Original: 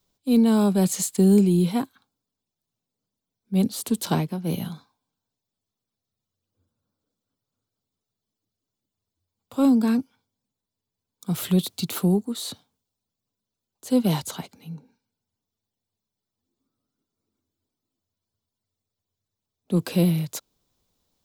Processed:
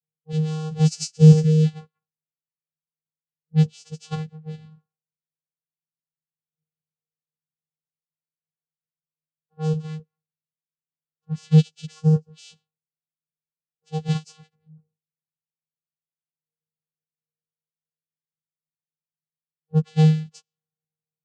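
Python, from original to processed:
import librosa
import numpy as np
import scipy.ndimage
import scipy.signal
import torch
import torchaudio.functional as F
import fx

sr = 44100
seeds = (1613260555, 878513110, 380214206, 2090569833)

y = fx.freq_snap(x, sr, grid_st=4)
y = fx.high_shelf(y, sr, hz=3300.0, db=10.0)
y = fx.env_lowpass(y, sr, base_hz=450.0, full_db=-12.5)
y = fx.vocoder(y, sr, bands=8, carrier='square', carrier_hz=156.0)
y = fx.upward_expand(y, sr, threshold_db=-25.0, expansion=2.5)
y = y * 10.0 ** (4.5 / 20.0)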